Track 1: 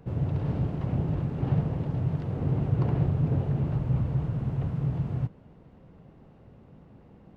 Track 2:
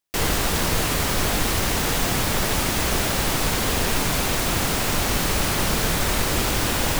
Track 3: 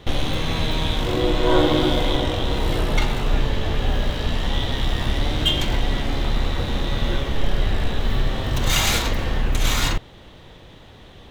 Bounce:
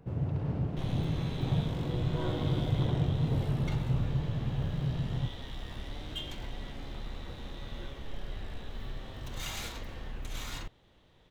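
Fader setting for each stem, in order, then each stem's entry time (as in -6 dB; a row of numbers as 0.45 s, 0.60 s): -4.0 dB, mute, -19.0 dB; 0.00 s, mute, 0.70 s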